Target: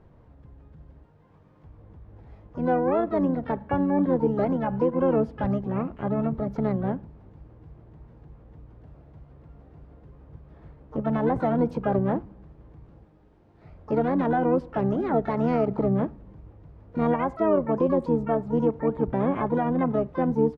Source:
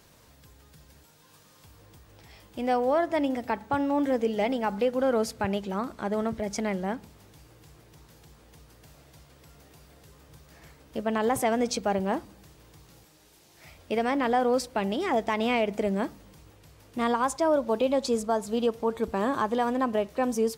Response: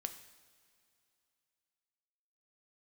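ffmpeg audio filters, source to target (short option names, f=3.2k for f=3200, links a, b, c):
-filter_complex "[0:a]lowpass=1k,asplit=3[a][b][c];[b]asetrate=29433,aresample=44100,atempo=1.49831,volume=-7dB[d];[c]asetrate=88200,aresample=44100,atempo=0.5,volume=-13dB[e];[a][d][e]amix=inputs=3:normalize=0,lowshelf=f=210:g=8"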